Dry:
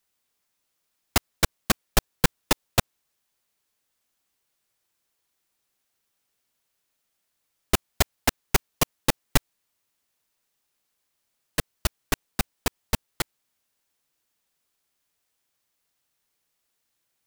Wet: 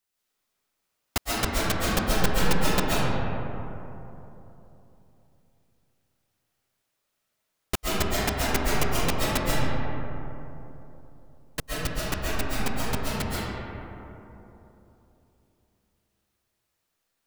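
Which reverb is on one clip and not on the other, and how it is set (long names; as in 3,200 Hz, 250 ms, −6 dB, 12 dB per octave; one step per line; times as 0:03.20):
comb and all-pass reverb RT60 3.3 s, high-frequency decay 0.35×, pre-delay 95 ms, DRR −7.5 dB
level −6.5 dB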